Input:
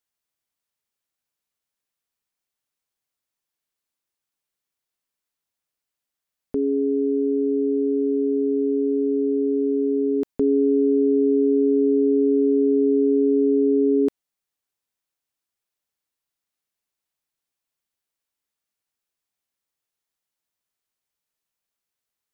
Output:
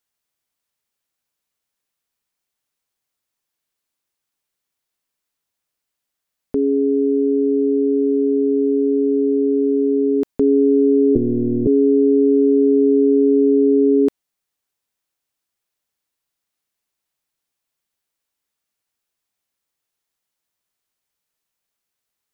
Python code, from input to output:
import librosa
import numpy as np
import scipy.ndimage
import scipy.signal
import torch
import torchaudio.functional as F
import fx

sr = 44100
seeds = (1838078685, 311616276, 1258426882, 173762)

y = fx.lpc_monotone(x, sr, seeds[0], pitch_hz=120.0, order=8, at=(11.15, 11.67))
y = F.gain(torch.from_numpy(y), 4.5).numpy()